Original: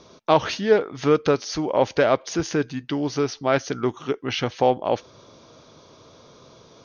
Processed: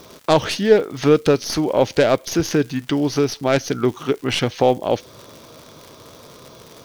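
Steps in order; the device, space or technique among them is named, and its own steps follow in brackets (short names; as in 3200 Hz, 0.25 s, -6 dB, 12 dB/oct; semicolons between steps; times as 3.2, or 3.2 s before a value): record under a worn stylus (tracing distortion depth 0.057 ms; crackle 130/s -36 dBFS; white noise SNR 40 dB); dynamic EQ 1100 Hz, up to -7 dB, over -33 dBFS, Q 0.83; gain +6 dB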